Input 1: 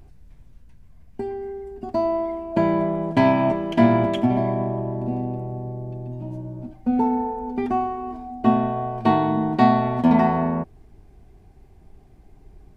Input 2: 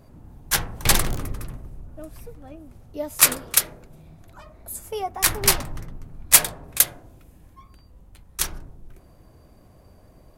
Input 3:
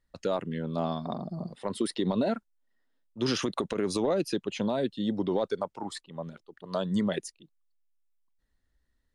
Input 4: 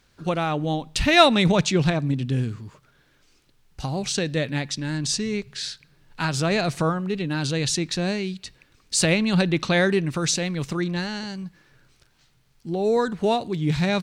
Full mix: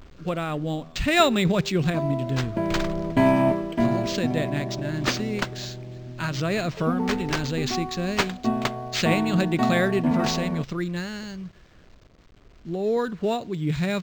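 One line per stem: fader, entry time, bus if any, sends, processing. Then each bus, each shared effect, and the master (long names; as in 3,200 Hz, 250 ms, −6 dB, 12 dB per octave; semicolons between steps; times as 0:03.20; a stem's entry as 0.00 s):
+1.0 dB, 0.00 s, no send, bit reduction 8 bits; automatic ducking −7 dB, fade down 0.30 s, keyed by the fourth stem
−9.5 dB, 1.85 s, no send, no processing
−17.5 dB, 0.00 s, no send, no processing
−2.5 dB, 0.00 s, no send, bit reduction 9 bits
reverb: not used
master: parametric band 840 Hz −8 dB 0.27 octaves; linearly interpolated sample-rate reduction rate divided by 4×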